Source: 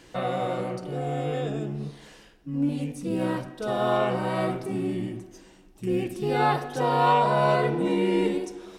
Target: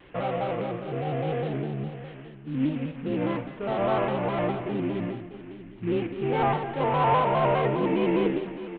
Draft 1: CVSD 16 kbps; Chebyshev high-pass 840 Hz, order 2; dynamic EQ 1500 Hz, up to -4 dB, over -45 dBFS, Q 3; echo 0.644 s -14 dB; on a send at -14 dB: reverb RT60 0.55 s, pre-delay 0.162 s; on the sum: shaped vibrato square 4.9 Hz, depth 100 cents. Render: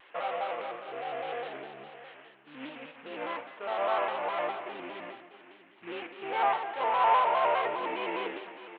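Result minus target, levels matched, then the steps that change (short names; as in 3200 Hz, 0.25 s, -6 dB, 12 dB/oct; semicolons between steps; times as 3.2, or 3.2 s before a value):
1000 Hz band +3.0 dB
remove: Chebyshev high-pass 840 Hz, order 2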